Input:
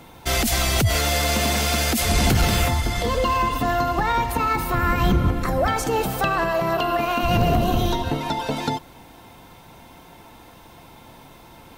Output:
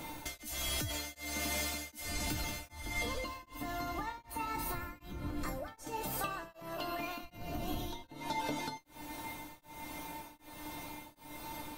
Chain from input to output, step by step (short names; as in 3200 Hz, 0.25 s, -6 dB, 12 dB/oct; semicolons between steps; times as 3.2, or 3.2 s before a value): high shelf 6000 Hz +6 dB; compressor 12:1, threshold -33 dBFS, peak gain reduction 19 dB; resonator 300 Hz, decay 0.25 s, harmonics all, mix 90%; beating tremolo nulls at 1.3 Hz; gain +13.5 dB